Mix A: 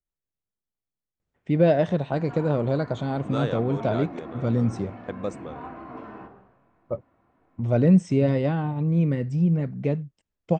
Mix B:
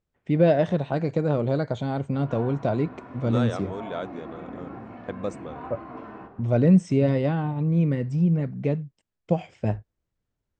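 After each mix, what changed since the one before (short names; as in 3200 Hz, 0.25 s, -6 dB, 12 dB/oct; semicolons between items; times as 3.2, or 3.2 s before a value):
first voice: entry -1.20 s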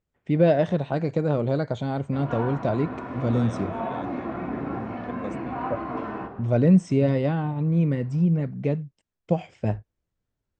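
second voice -7.5 dB; background +8.5 dB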